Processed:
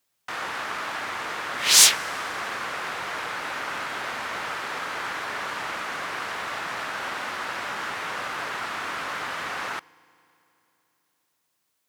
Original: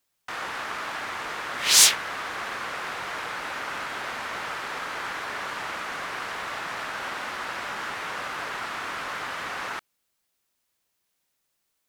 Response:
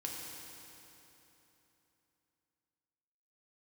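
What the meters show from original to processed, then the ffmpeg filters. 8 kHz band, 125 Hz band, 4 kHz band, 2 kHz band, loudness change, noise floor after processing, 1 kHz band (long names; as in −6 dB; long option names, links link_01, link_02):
+1.5 dB, +1.0 dB, +1.5 dB, +1.5 dB, +1.5 dB, −75 dBFS, +1.5 dB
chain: -filter_complex "[0:a]highpass=65,asplit=2[link_01][link_02];[1:a]atrim=start_sample=2205[link_03];[link_02][link_03]afir=irnorm=-1:irlink=0,volume=-21.5dB[link_04];[link_01][link_04]amix=inputs=2:normalize=0,volume=1dB"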